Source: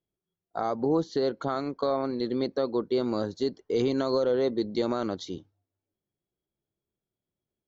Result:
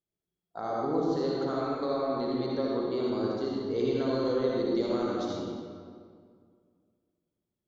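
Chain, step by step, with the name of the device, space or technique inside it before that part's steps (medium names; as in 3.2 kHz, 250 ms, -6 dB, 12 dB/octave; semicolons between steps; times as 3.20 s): stairwell (reverberation RT60 2.1 s, pre-delay 53 ms, DRR -5 dB); 3.10–4.25 s: low-pass 5.6 kHz 12 dB/octave; trim -7.5 dB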